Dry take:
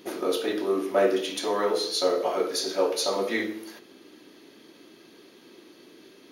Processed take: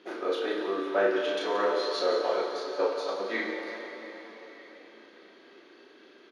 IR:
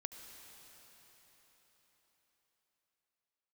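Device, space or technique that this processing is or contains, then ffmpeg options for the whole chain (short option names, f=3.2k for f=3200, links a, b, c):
station announcement: -filter_complex "[0:a]asettb=1/sr,asplit=3[a][b][c];[a]atrim=end=2.414[d];[b]atrim=start=2.41:end=3.3,asetpts=PTS-STARTPTS,afade=t=in:d=0.004:c=qsin,afade=t=out:st=0.886:d=0.004:c=qsin,agate=range=-8dB:threshold=-25dB:ratio=16:detection=peak[e];[c]atrim=start=3.296[f];[d][e]acrossfade=d=0.004:c1=hsin:c2=qsin[g];[g][f]acrossfade=d=0.004:c1=qsin:c2=hsin,highpass=330,lowpass=3.7k,equalizer=f=1.5k:t=o:w=0.36:g=6.5,aecho=1:1:34.99|174.9:0.631|0.282[h];[1:a]atrim=start_sample=2205[i];[h][i]afir=irnorm=-1:irlink=0"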